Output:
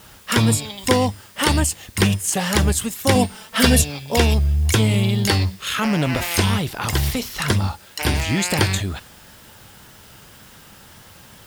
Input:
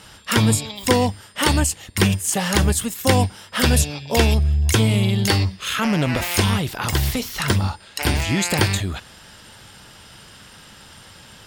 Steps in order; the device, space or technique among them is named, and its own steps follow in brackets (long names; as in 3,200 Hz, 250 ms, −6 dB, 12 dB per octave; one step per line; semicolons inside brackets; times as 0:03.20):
0:03.15–0:03.82: comb filter 4.5 ms, depth 96%
plain cassette with noise reduction switched in (one half of a high-frequency compander decoder only; tape wow and flutter; white noise bed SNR 29 dB)